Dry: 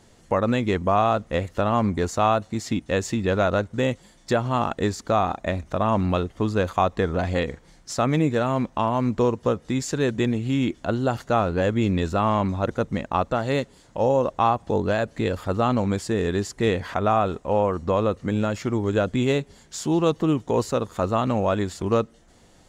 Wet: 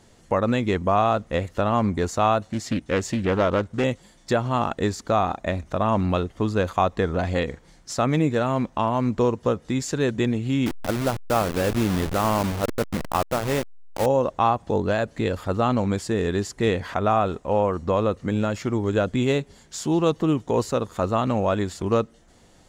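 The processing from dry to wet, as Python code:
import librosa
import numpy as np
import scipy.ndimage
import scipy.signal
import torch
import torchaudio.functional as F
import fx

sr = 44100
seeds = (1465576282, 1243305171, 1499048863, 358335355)

y = fx.doppler_dist(x, sr, depth_ms=0.41, at=(2.5, 3.84))
y = fx.delta_hold(y, sr, step_db=-23.0, at=(10.66, 14.06))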